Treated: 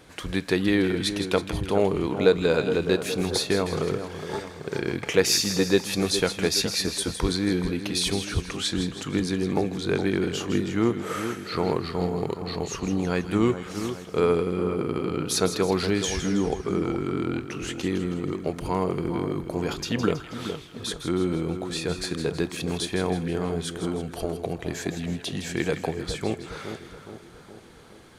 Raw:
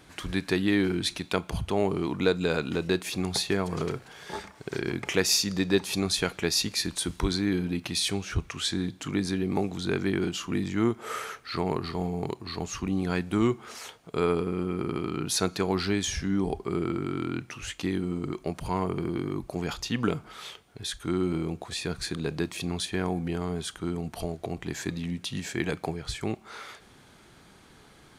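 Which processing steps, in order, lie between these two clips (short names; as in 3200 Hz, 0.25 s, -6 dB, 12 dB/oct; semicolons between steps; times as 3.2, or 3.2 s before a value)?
bell 500 Hz +7 dB 0.42 oct; on a send: split-band echo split 1500 Hz, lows 0.417 s, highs 0.161 s, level -9 dB; on the sum: gain +1.5 dB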